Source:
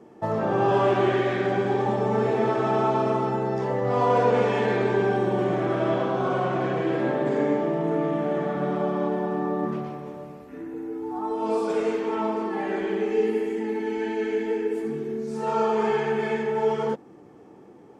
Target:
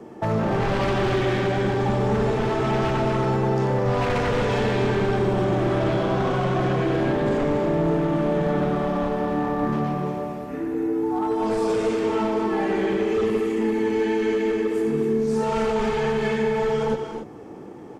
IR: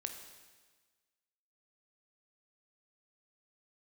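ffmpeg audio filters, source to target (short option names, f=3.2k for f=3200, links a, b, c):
-filter_complex "[0:a]aeval=exprs='0.355*sin(PI/2*2.82*val(0)/0.355)':c=same,acrossover=split=220|3000[a][b][c];[b]acompressor=threshold=-18dB:ratio=6[d];[a][d][c]amix=inputs=3:normalize=0,asoftclip=type=hard:threshold=-13dB,lowshelf=f=80:g=5.5,aecho=1:1:90.38|239.1|282.8:0.251|0.316|0.316,volume=-5dB"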